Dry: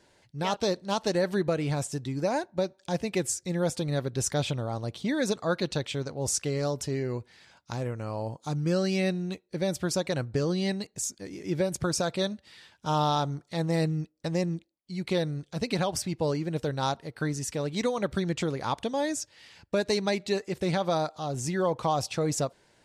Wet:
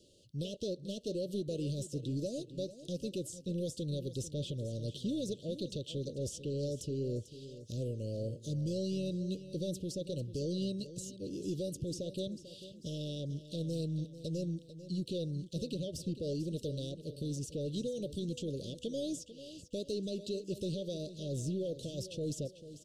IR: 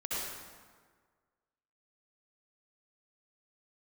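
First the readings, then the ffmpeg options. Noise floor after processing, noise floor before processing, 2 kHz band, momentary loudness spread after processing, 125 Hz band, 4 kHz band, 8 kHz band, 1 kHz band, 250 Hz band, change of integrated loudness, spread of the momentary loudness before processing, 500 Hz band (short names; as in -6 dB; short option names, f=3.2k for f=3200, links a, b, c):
-56 dBFS, -67 dBFS, -27.5 dB, 5 LU, -6.5 dB, -9.5 dB, -13.0 dB, under -35 dB, -7.0 dB, -9.0 dB, 7 LU, -9.5 dB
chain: -filter_complex "[0:a]acrossover=split=3000[a][b];[a]alimiter=level_in=1.5dB:limit=-24dB:level=0:latency=1:release=375,volume=-1.5dB[c];[b]acompressor=threshold=-47dB:ratio=6[d];[c][d]amix=inputs=2:normalize=0,asoftclip=type=tanh:threshold=-28dB,asuperstop=centerf=1300:order=20:qfactor=0.58,aecho=1:1:444|888|1332|1776:0.211|0.0845|0.0338|0.0135"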